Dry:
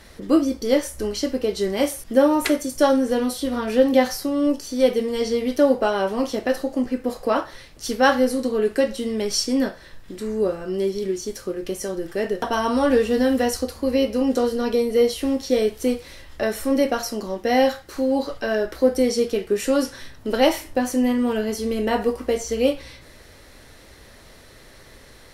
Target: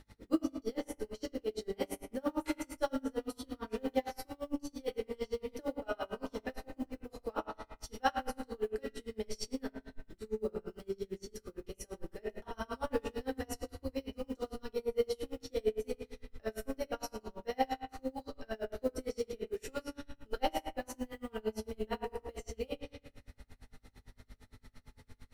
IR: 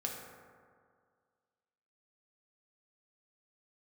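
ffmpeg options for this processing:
-filter_complex "[0:a]acrusher=bits=8:mode=log:mix=0:aa=0.000001,asubboost=boost=7.5:cutoff=74,aeval=exprs='val(0)+0.0126*(sin(2*PI*50*n/s)+sin(2*PI*2*50*n/s)/2+sin(2*PI*3*50*n/s)/3+sin(2*PI*4*50*n/s)/4+sin(2*PI*5*50*n/s)/5)':c=same[a];[1:a]atrim=start_sample=2205,asetrate=74970,aresample=44100[b];[a][b]afir=irnorm=-1:irlink=0,aeval=exprs='val(0)*pow(10,-32*(0.5-0.5*cos(2*PI*8.8*n/s))/20)':c=same,volume=-7dB"

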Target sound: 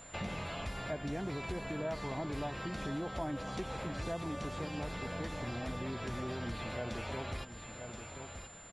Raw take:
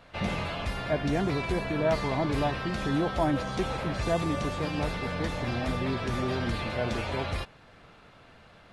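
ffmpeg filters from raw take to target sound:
-af "aecho=1:1:1028:0.158,aeval=exprs='val(0)+0.00224*sin(2*PI*7200*n/s)':c=same,acompressor=threshold=-40dB:ratio=2.5"

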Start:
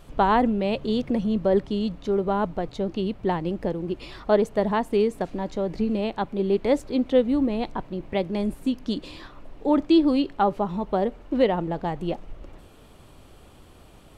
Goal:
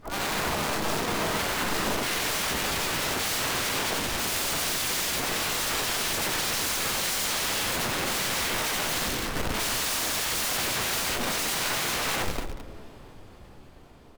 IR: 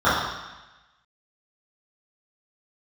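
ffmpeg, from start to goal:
-filter_complex "[0:a]afftfilt=real='re':imag='-im':win_size=8192:overlap=0.75,highshelf=f=3.9k:g=-6.5,bandreject=f=50:t=h:w=6,bandreject=f=100:t=h:w=6,bandreject=f=150:t=h:w=6,bandreject=f=200:t=h:w=6,bandreject=f=250:t=h:w=6,acontrast=41,alimiter=limit=-17.5dB:level=0:latency=1:release=25,dynaudnorm=f=580:g=9:m=15dB,aeval=exprs='(mod(10.6*val(0)+1,2)-1)/10.6':c=same,asplit=4[a][b][c][d];[b]asetrate=33038,aresample=44100,atempo=1.33484,volume=-4dB[e];[c]asetrate=37084,aresample=44100,atempo=1.18921,volume=-12dB[f];[d]asetrate=66075,aresample=44100,atempo=0.66742,volume=-2dB[g];[a][e][f][g]amix=inputs=4:normalize=0,asplit=2[h][i];[i]aecho=0:1:37.9|215.7:0.355|0.282[j];[h][j]amix=inputs=2:normalize=0,volume=-6.5dB"

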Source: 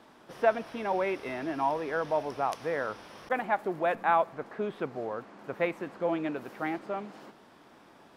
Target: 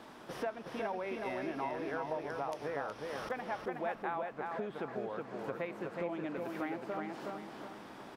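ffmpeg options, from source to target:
-filter_complex "[0:a]acompressor=threshold=-43dB:ratio=4,asplit=2[a][b];[b]adelay=368,lowpass=f=4.2k:p=1,volume=-3dB,asplit=2[c][d];[d]adelay=368,lowpass=f=4.2k:p=1,volume=0.39,asplit=2[e][f];[f]adelay=368,lowpass=f=4.2k:p=1,volume=0.39,asplit=2[g][h];[h]adelay=368,lowpass=f=4.2k:p=1,volume=0.39,asplit=2[i][j];[j]adelay=368,lowpass=f=4.2k:p=1,volume=0.39[k];[c][e][g][i][k]amix=inputs=5:normalize=0[l];[a][l]amix=inputs=2:normalize=0,volume=4dB"

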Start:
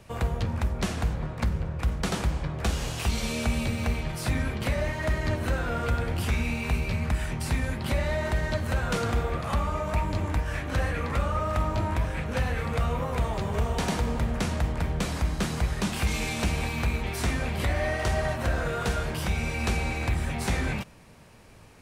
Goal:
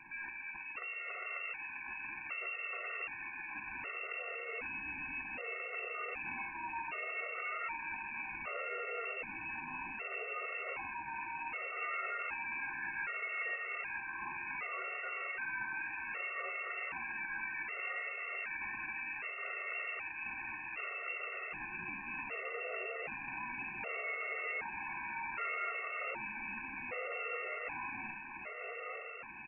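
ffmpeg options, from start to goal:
-filter_complex "[0:a]highpass=f=180:p=1,asoftclip=type=tanh:threshold=-27.5dB,alimiter=level_in=15dB:limit=-24dB:level=0:latency=1:release=12,volume=-15dB,tiltshelf=f=720:g=-3.5,atempo=0.74,asplit=2[a][b];[b]adelay=48,volume=-13dB[c];[a][c]amix=inputs=2:normalize=0,aecho=1:1:944|1888|2832|3776|4720|5664|6608|7552:0.631|0.372|0.22|0.13|0.0765|0.0451|0.0266|0.0157,lowpass=f=2.4k:t=q:w=0.5098,lowpass=f=2.4k:t=q:w=0.6013,lowpass=f=2.4k:t=q:w=0.9,lowpass=f=2.4k:t=q:w=2.563,afreqshift=-2800,afftfilt=real='re*gt(sin(2*PI*0.65*pts/sr)*(1-2*mod(floor(b*sr/1024/370),2)),0)':imag='im*gt(sin(2*PI*0.65*pts/sr)*(1-2*mod(floor(b*sr/1024/370),2)),0)':win_size=1024:overlap=0.75,volume=5dB"

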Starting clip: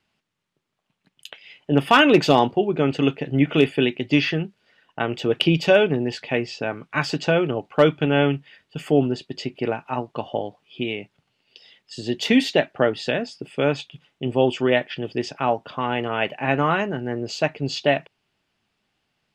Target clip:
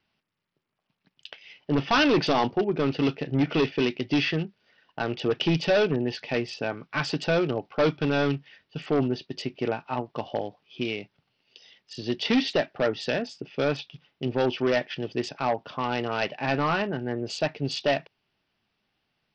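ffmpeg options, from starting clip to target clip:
-af "aresample=16000,asoftclip=type=hard:threshold=-14.5dB,aresample=44100,volume=-3dB" -ar 44100 -c:a sbc -b:a 64k

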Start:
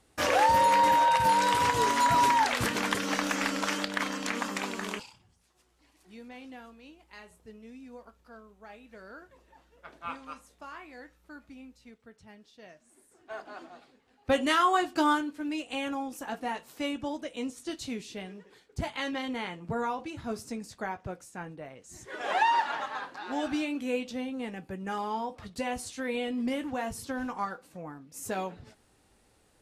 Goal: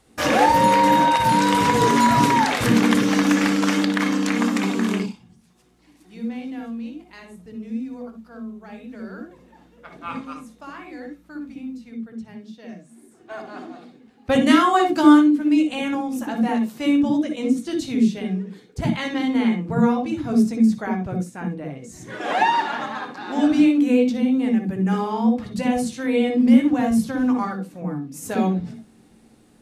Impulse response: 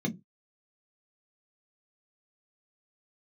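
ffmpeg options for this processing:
-filter_complex "[0:a]asplit=2[a][b];[1:a]atrim=start_sample=2205,atrim=end_sample=4410,adelay=59[c];[b][c]afir=irnorm=-1:irlink=0,volume=-8.5dB[d];[a][d]amix=inputs=2:normalize=0,volume=5dB"

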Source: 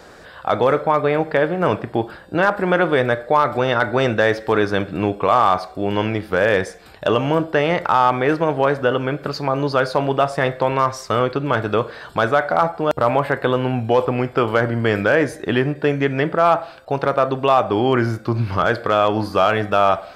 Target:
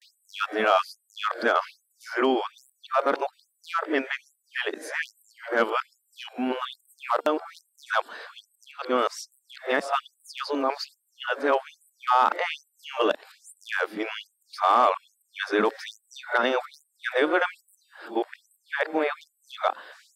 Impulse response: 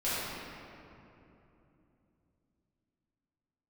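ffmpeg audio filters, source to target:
-af "areverse,asubboost=boost=3:cutoff=200,afftfilt=real='re*gte(b*sr/1024,210*pow(7900/210,0.5+0.5*sin(2*PI*1.2*pts/sr)))':imag='im*gte(b*sr/1024,210*pow(7900/210,0.5+0.5*sin(2*PI*1.2*pts/sr)))':win_size=1024:overlap=0.75,volume=-3.5dB"

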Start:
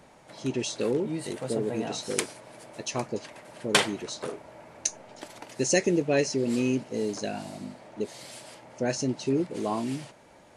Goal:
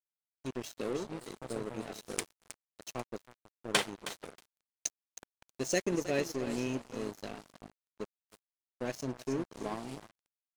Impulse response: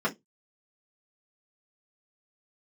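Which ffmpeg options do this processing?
-af "aeval=exprs='val(0)+0.00447*sin(2*PI*670*n/s)':c=same,aecho=1:1:317|634|951:0.299|0.0925|0.0287,aeval=exprs='sgn(val(0))*max(abs(val(0))-0.0237,0)':c=same,volume=-5.5dB"

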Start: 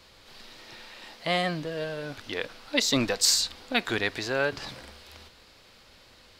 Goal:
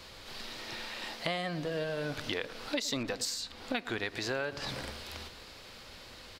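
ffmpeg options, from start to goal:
-filter_complex "[0:a]asplit=2[a][b];[b]adelay=107,lowpass=f=1.1k:p=1,volume=-16dB,asplit=2[c][d];[d]adelay=107,lowpass=f=1.1k:p=1,volume=0.54,asplit=2[e][f];[f]adelay=107,lowpass=f=1.1k:p=1,volume=0.54,asplit=2[g][h];[h]adelay=107,lowpass=f=1.1k:p=1,volume=0.54,asplit=2[i][j];[j]adelay=107,lowpass=f=1.1k:p=1,volume=0.54[k];[a][c][e][g][i][k]amix=inputs=6:normalize=0,acompressor=threshold=-36dB:ratio=8,asettb=1/sr,asplit=3[l][m][n];[l]atrim=end=3.034[o];[m]atrim=start=3.03:end=3.99,asetpts=PTS-STARTPTS,afade=t=in:d=0.004:c=qsin,afade=t=out:st=0.956:d=0.004:c=qsin,adynamicequalizer=threshold=0.00224:dfrequency=3400:dqfactor=0.7:tfrequency=3400:tqfactor=0.7:attack=5:release=100:ratio=0.375:range=3:mode=cutabove:tftype=highshelf[p];[n]atrim=start=3.986[q];[o][p]acrossfade=d=0.004:c1=hsin:c2=qsin[r];[r][q]acrossfade=d=0.004:c1=qsin:c2=hsin,volume=5dB"

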